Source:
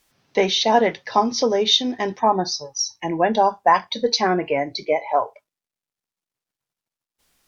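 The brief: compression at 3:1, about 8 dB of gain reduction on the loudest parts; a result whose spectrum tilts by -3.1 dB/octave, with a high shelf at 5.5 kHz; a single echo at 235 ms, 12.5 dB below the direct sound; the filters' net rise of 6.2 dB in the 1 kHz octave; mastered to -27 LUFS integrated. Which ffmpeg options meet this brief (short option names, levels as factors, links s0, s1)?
-af "equalizer=f=1000:t=o:g=8,highshelf=f=5500:g=-4,acompressor=threshold=0.178:ratio=3,aecho=1:1:235:0.237,volume=0.473"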